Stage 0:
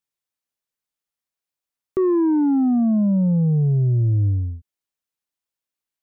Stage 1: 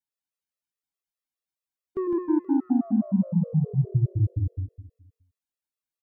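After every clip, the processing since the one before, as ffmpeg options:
-af "aecho=1:1:159|318|477|636|795:0.708|0.269|0.102|0.0388|0.0148,afftfilt=real='re*gt(sin(2*PI*4.8*pts/sr)*(1-2*mod(floor(b*sr/1024/350),2)),0)':imag='im*gt(sin(2*PI*4.8*pts/sr)*(1-2*mod(floor(b*sr/1024/350),2)),0)':win_size=1024:overlap=0.75,volume=-5dB"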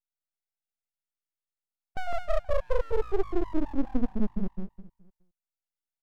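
-af "aeval=exprs='abs(val(0))':c=same"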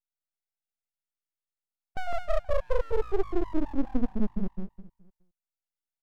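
-af anull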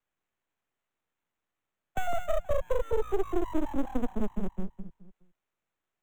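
-filter_complex "[0:a]acrossover=split=89|400[a][b][c];[a]acompressor=threshold=-32dB:ratio=4[d];[b]acompressor=threshold=-41dB:ratio=4[e];[c]acompressor=threshold=-36dB:ratio=4[f];[d][e][f]amix=inputs=3:normalize=0,acrossover=split=140|390|1500[g][h][i][j];[j]acrusher=samples=9:mix=1:aa=0.000001[k];[g][h][i][k]amix=inputs=4:normalize=0,volume=5.5dB"

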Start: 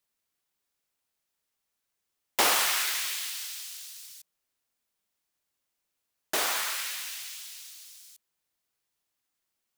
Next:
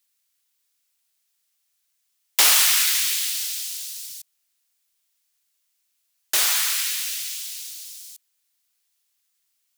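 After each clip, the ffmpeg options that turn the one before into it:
-af "tiltshelf=f=1.4k:g=-9.5,volume=1.5dB"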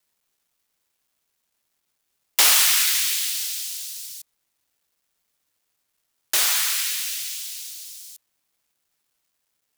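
-af "acrusher=bits=10:mix=0:aa=0.000001"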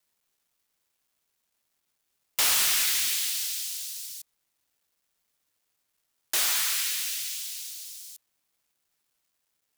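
-af "asoftclip=type=tanh:threshold=-16.5dB,volume=-2.5dB"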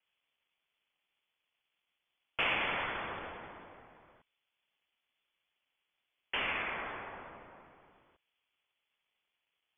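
-af "lowpass=f=3k:t=q:w=0.5098,lowpass=f=3k:t=q:w=0.6013,lowpass=f=3k:t=q:w=0.9,lowpass=f=3k:t=q:w=2.563,afreqshift=-3500,aexciter=amount=2.2:drive=6.5:freq=2.3k,volume=-3dB"

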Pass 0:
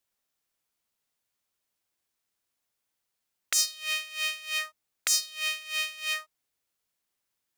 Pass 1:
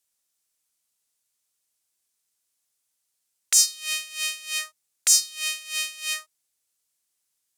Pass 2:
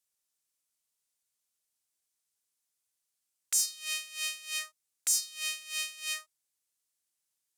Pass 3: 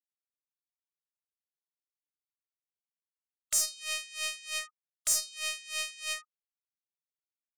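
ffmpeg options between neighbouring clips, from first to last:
-af "equalizer=f=8.6k:t=o:w=2:g=14,volume=-4dB"
-filter_complex "[0:a]acrossover=split=7600[a][b];[a]alimiter=limit=-15.5dB:level=0:latency=1[c];[b]acrusher=bits=5:mode=log:mix=0:aa=0.000001[d];[c][d]amix=inputs=2:normalize=0,volume=-6.5dB"
-af "afftfilt=real='re*gte(hypot(re,im),0.00631)':imag='im*gte(hypot(re,im),0.00631)':win_size=1024:overlap=0.75,aeval=exprs='0.266*(cos(1*acos(clip(val(0)/0.266,-1,1)))-cos(1*PI/2))+0.0376*(cos(4*acos(clip(val(0)/0.266,-1,1)))-cos(4*PI/2))+0.0376*(cos(6*acos(clip(val(0)/0.266,-1,1)))-cos(6*PI/2))':c=same"

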